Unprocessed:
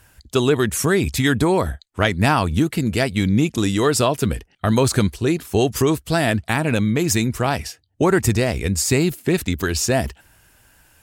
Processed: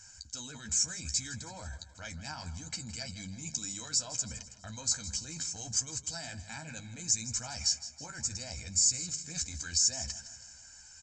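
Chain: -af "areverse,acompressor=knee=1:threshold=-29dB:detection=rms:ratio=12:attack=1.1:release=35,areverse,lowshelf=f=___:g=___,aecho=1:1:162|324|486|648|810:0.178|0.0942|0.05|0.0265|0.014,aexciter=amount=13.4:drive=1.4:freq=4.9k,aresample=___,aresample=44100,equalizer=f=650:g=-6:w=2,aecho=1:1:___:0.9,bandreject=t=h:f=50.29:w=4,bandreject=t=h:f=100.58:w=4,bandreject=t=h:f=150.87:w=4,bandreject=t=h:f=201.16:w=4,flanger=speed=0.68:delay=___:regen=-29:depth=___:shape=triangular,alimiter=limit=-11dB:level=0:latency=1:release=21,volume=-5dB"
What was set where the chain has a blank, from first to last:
390, -5.5, 16000, 1.3, 8.4, 5.6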